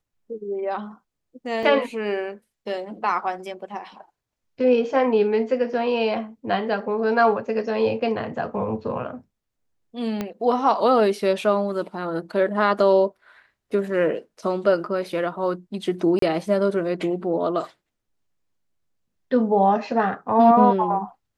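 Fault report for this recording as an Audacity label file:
1.630000	1.630000	gap 3.1 ms
10.210000	10.210000	pop -13 dBFS
16.190000	16.220000	gap 33 ms

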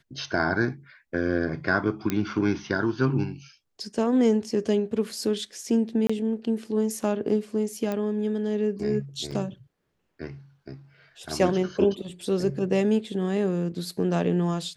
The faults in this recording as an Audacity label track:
2.100000	2.100000	pop -11 dBFS
6.070000	6.090000	gap 25 ms
7.920000	7.920000	pop -17 dBFS
9.310000	9.320000	gap 5.8 ms

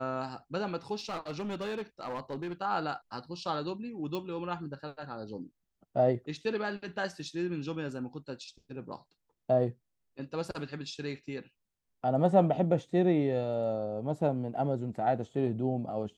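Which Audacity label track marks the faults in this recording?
0.950000	2.530000	clipped -32 dBFS
4.150000	4.150000	pop -23 dBFS

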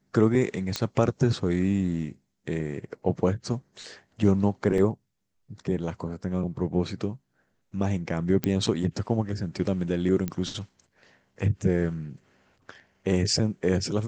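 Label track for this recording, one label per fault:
0.760000	0.760000	pop -11 dBFS
4.780000	4.780000	gap 2.5 ms
8.440000	8.440000	pop -11 dBFS
10.280000	10.280000	pop -16 dBFS

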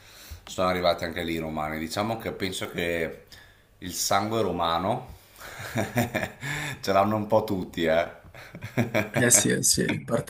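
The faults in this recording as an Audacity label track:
7.630000	7.630000	gap 2.4 ms

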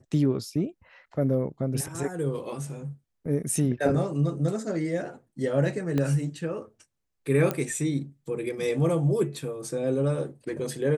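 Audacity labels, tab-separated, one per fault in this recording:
5.980000	5.980000	pop -15 dBFS
7.510000	7.510000	pop -13 dBFS

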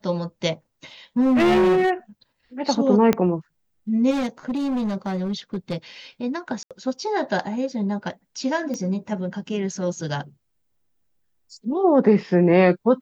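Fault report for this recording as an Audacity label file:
1.200000	1.910000	clipped -14.5 dBFS
3.130000	3.130000	pop -6 dBFS
4.100000	5.770000	clipped -21 dBFS
6.630000	6.710000	gap 77 ms
8.740000	8.740000	pop -18 dBFS

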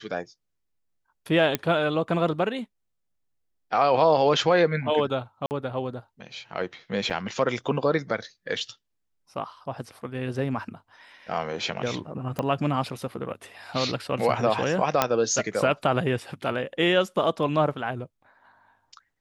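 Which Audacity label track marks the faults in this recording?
1.550000	1.550000	pop -8 dBFS
5.460000	5.510000	gap 49 ms
7.100000	7.110000	gap 5.1 ms
12.390000	12.390000	pop -14 dBFS
15.020000	15.020000	pop -4 dBFS

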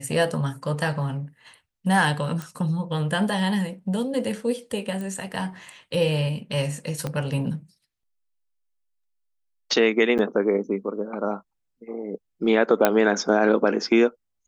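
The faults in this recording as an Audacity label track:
2.420000	2.420000	pop
5.010000	5.010000	pop
7.070000	7.070000	pop -15 dBFS
10.180000	10.190000	gap 8.6 ms
12.850000	12.850000	pop -3 dBFS

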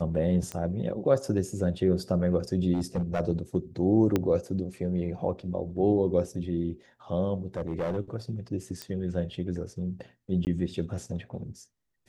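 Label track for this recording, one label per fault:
0.520000	0.520000	pop -20 dBFS
2.740000	3.210000	clipped -23 dBFS
4.160000	4.160000	pop -12 dBFS
7.570000	7.970000	clipped -25.5 dBFS
8.820000	8.820000	pop -20 dBFS
10.450000	10.470000	gap 19 ms

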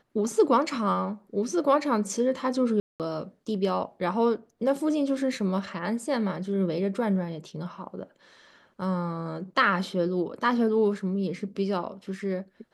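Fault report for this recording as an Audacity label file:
2.800000	3.000000	gap 0.198 s

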